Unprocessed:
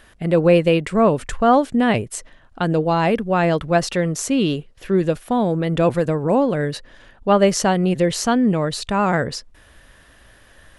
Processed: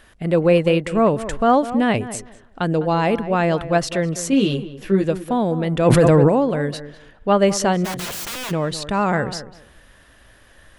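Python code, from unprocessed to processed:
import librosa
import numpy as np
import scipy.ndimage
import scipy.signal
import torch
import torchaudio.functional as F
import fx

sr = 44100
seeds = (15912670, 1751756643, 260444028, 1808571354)

y = fx.doubler(x, sr, ms=15.0, db=-3.0, at=(4.31, 5.04))
y = fx.overflow_wrap(y, sr, gain_db=23.5, at=(7.84, 8.5), fade=0.02)
y = fx.echo_tape(y, sr, ms=202, feedback_pct=22, wet_db=-11.5, lp_hz=1500.0, drive_db=6.0, wow_cents=21)
y = fx.env_flatten(y, sr, amount_pct=100, at=(5.85, 6.28), fade=0.02)
y = y * 10.0 ** (-1.0 / 20.0)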